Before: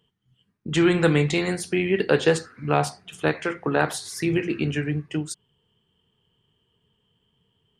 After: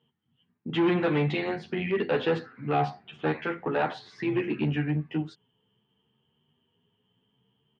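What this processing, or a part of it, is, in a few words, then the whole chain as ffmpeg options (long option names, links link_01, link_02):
barber-pole flanger into a guitar amplifier: -filter_complex "[0:a]asplit=2[link_01][link_02];[link_02]adelay=10.5,afreqshift=0.63[link_03];[link_01][link_03]amix=inputs=2:normalize=1,asoftclip=type=tanh:threshold=-20dB,highpass=110,equalizer=frequency=130:width_type=q:width=4:gain=3,equalizer=frequency=240:width_type=q:width=4:gain=7,equalizer=frequency=810:width_type=q:width=4:gain=5,lowpass=frequency=3500:width=0.5412,lowpass=frequency=3500:width=1.3066"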